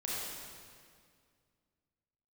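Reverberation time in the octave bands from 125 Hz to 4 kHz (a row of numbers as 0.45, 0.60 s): 2.6, 2.5, 2.2, 2.0, 1.9, 1.8 s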